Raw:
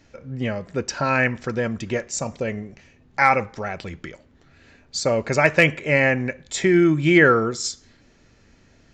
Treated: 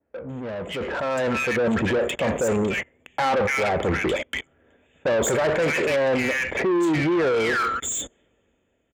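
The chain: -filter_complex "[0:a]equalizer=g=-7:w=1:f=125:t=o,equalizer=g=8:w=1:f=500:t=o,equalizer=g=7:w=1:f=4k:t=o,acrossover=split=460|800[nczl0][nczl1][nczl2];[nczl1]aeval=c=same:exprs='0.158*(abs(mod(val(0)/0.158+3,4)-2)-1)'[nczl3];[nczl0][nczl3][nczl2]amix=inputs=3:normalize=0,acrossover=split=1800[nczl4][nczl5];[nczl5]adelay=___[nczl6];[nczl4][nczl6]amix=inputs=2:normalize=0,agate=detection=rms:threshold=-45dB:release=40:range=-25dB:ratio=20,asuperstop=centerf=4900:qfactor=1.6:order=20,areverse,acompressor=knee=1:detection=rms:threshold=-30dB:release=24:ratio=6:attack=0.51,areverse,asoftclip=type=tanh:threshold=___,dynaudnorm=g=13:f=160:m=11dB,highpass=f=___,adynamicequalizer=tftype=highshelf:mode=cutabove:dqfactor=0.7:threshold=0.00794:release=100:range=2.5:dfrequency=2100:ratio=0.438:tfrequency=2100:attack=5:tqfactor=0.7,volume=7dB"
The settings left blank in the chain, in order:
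290, -36.5dB, 49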